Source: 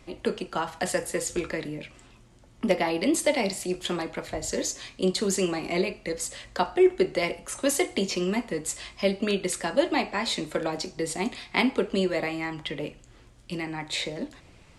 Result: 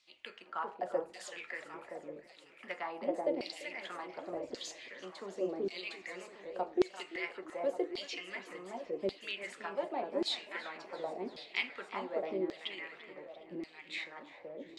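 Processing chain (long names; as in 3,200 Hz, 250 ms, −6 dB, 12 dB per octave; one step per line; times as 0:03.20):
delay that swaps between a low-pass and a high-pass 379 ms, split 2,000 Hz, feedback 52%, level −2 dB
auto-filter band-pass saw down 0.88 Hz 340–4,500 Hz
feedback echo with a swinging delay time 340 ms, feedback 58%, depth 114 cents, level −19 dB
level −5 dB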